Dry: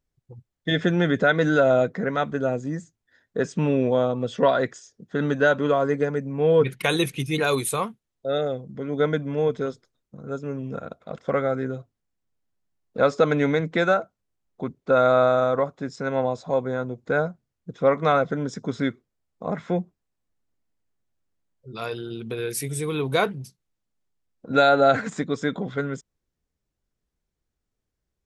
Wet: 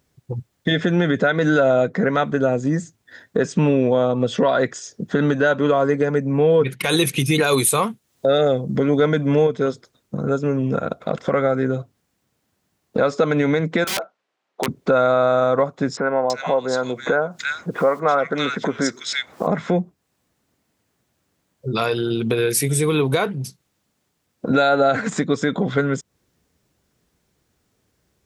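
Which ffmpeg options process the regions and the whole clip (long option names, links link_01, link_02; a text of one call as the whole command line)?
ffmpeg -i in.wav -filter_complex "[0:a]asettb=1/sr,asplit=3[link_01][link_02][link_03];[link_01]atrim=end=6.854[link_04];[link_02]atrim=start=6.85:end=9.47,asetpts=PTS-STARTPTS,afade=type=in:duration=0.004:curve=qsin,afade=type=out:start_time=2.616:duration=0.004:curve=qsin,highshelf=frequency=4800:gain=5.5,acontrast=32[link_05];[link_03]atrim=start=9.466[link_06];[link_04][link_05]acrossfade=duration=0.004:curve1=hsin:curve2=qsin[link_07];[link_07][link_06]acrossfade=duration=0.004:curve1=qsin:curve2=hsin,asettb=1/sr,asplit=3[link_08][link_09][link_10];[link_08]atrim=end=13.844[link_11];[link_09]atrim=start=13.84:end=14.68,asetpts=PTS-STARTPTS,afade=type=in:duration=0.004:curve=qsin,afade=type=out:start_time=0.836:duration=0.004:curve=qsin,highpass=530,lowpass=3500,acompressor=threshold=-33dB:ratio=1.5:attack=3.2:release=140:knee=1:detection=peak,aeval=exprs='(mod(20*val(0)+1,2)-1)/20':channel_layout=same[link_12];[link_10]atrim=start=14.676[link_13];[link_11][link_12]acrossfade=duration=0.004:curve1=hsin:curve2=qsin[link_14];[link_14][link_13]acrossfade=duration=0.004:curve1=qsin:curve2=hsin,asettb=1/sr,asplit=3[link_15][link_16][link_17];[link_15]atrim=end=15.974[link_18];[link_16]atrim=start=15.97:end=19.47,asetpts=PTS-STARTPTS,afade=type=in:duration=0.004:curve=qsin,afade=type=out:start_time=3.496:duration=0.004:curve=qsin,acompressor=mode=upward:threshold=-23dB:ratio=2.5:attack=3.2:release=140:knee=2.83:detection=peak,highpass=frequency=640:poles=1,acrossover=split=1900[link_19][link_20];[link_20]adelay=330[link_21];[link_19][link_21]amix=inputs=2:normalize=0,atrim=end_sample=154350[link_22];[link_17]atrim=start=19.466[link_23];[link_18][link_22]acrossfade=duration=0.004:curve1=hsin:curve2=qsin[link_24];[link_24][link_23]acrossfade=duration=0.004:curve1=qsin:curve2=hsin,highpass=89,acompressor=threshold=-39dB:ratio=2.5,alimiter=level_in=24.5dB:limit=-1dB:release=50:level=0:latency=1,volume=-6.5dB" out.wav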